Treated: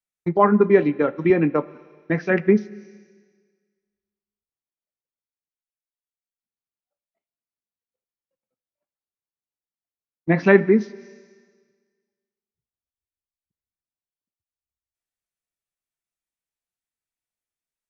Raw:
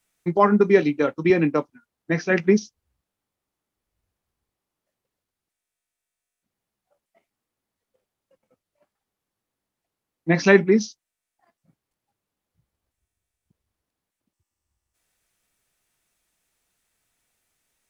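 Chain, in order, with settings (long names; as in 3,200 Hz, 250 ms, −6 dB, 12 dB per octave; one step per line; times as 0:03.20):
noise gate −40 dBFS, range −22 dB
four-comb reverb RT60 1.6 s, combs from 26 ms, DRR 19 dB
treble cut that deepens with the level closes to 2,100 Hz, closed at −19.5 dBFS
level +1 dB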